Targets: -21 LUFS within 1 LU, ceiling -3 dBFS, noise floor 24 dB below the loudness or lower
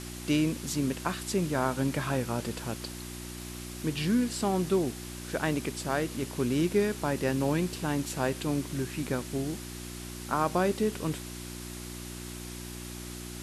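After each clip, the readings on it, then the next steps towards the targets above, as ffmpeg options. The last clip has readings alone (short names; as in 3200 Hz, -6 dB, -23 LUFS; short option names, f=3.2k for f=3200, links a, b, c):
hum 60 Hz; harmonics up to 360 Hz; hum level -39 dBFS; noise floor -41 dBFS; noise floor target -56 dBFS; loudness -31.5 LUFS; peak -14.0 dBFS; loudness target -21.0 LUFS
-> -af "bandreject=f=60:t=h:w=4,bandreject=f=120:t=h:w=4,bandreject=f=180:t=h:w=4,bandreject=f=240:t=h:w=4,bandreject=f=300:t=h:w=4,bandreject=f=360:t=h:w=4"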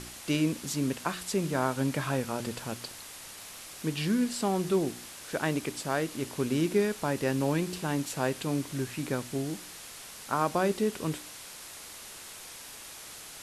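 hum none; noise floor -46 dBFS; noise floor target -55 dBFS
-> -af "afftdn=nr=9:nf=-46"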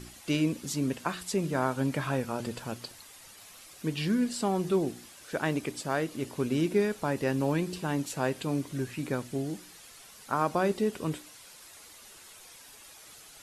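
noise floor -52 dBFS; noise floor target -55 dBFS
-> -af "afftdn=nr=6:nf=-52"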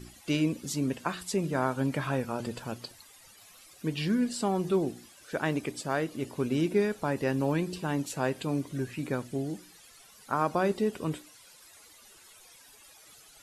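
noise floor -55 dBFS; loudness -31.0 LUFS; peak -14.5 dBFS; loudness target -21.0 LUFS
-> -af "volume=10dB"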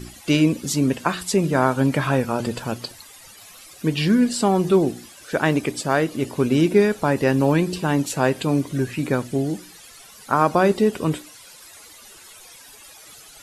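loudness -21.0 LUFS; peak -4.5 dBFS; noise floor -45 dBFS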